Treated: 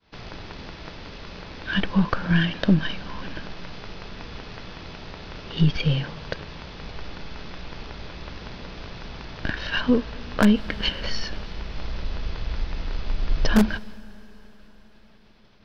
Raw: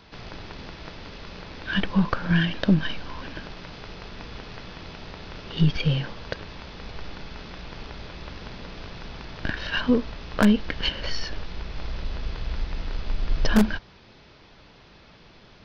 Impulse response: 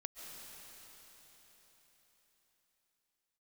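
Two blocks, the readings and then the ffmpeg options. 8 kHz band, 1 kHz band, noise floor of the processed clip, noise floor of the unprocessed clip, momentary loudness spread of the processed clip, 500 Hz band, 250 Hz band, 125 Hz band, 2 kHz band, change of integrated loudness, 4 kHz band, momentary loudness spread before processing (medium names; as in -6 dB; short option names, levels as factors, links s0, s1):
no reading, +1.0 dB, -51 dBFS, -52 dBFS, 18 LU, +1.0 dB, +1.0 dB, +1.0 dB, +1.0 dB, +1.0 dB, +1.0 dB, 18 LU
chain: -filter_complex "[0:a]agate=range=0.0224:threshold=0.00708:ratio=3:detection=peak,asplit=2[s0][s1];[1:a]atrim=start_sample=2205[s2];[s1][s2]afir=irnorm=-1:irlink=0,volume=0.2[s3];[s0][s3]amix=inputs=2:normalize=0"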